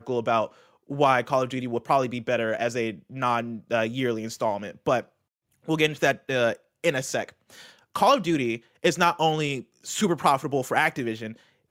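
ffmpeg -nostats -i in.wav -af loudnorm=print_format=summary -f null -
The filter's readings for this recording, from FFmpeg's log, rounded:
Input Integrated:    -25.2 LUFS
Input True Peak:      -5.5 dBTP
Input LRA:             3.0 LU
Input Threshold:     -35.6 LUFS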